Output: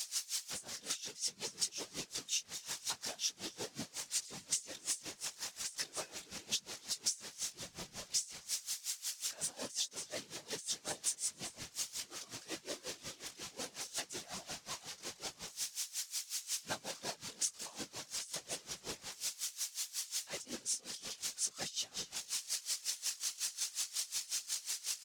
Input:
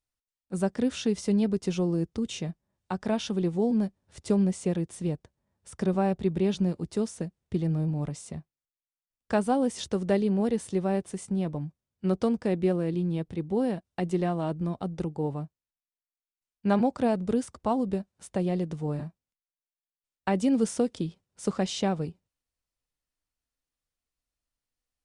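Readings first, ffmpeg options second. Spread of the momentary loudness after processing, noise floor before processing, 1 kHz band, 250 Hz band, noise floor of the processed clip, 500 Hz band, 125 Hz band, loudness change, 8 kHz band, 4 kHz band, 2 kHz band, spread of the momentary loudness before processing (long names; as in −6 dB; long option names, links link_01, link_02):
7 LU, below −85 dBFS, −17.0 dB, −28.5 dB, −62 dBFS, −22.5 dB, −28.5 dB, −10.5 dB, +9.0 dB, +4.5 dB, −4.5 dB, 10 LU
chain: -filter_complex "[0:a]aeval=exprs='val(0)+0.5*0.0422*sgn(val(0))':channel_layout=same,asplit=2[link_01][link_02];[link_02]alimiter=limit=-21.5dB:level=0:latency=1:release=485,volume=0dB[link_03];[link_01][link_03]amix=inputs=2:normalize=0,bandpass=frequency=6100:width_type=q:width=1.6:csg=0,flanger=delay=18.5:depth=2.7:speed=0.49,afftfilt=real='hypot(re,im)*cos(2*PI*random(0))':imag='hypot(re,im)*sin(2*PI*random(1))':win_size=512:overlap=0.75,asplit=2[link_04][link_05];[link_05]aecho=0:1:266:0.188[link_06];[link_04][link_06]amix=inputs=2:normalize=0,acompressor=threshold=-43dB:ratio=8,aeval=exprs='val(0)*pow(10,-21*(0.5-0.5*cos(2*PI*5.5*n/s))/20)':channel_layout=same,volume=13dB"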